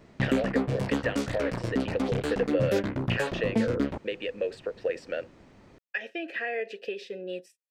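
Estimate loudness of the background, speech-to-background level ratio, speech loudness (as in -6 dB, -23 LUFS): -30.0 LUFS, -3.0 dB, -33.0 LUFS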